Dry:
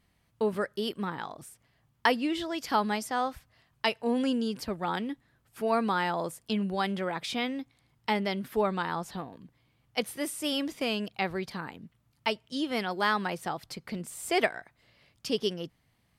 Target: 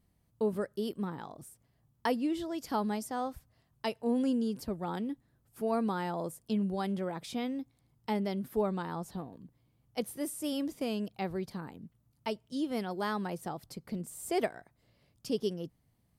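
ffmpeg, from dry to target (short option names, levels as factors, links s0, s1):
-af "equalizer=f=2300:t=o:w=2.9:g=-12.5"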